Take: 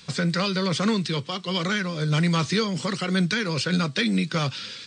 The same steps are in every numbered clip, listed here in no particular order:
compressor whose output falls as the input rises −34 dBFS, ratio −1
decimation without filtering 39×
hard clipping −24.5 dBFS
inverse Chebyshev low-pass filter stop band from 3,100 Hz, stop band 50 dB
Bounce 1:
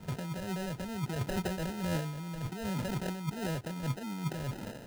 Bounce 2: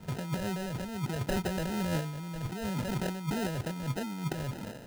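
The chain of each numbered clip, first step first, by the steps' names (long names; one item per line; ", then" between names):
compressor whose output falls as the input rises, then hard clipping, then inverse Chebyshev low-pass filter, then decimation without filtering
inverse Chebyshev low-pass filter, then decimation without filtering, then compressor whose output falls as the input rises, then hard clipping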